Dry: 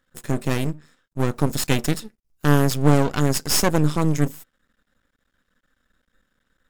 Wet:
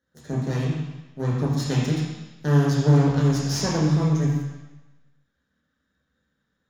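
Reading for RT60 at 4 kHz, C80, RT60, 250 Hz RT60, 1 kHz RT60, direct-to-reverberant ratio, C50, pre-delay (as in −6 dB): 1.1 s, 2.5 dB, 1.1 s, 0.95 s, 1.1 s, −4.0 dB, 0.5 dB, 3 ms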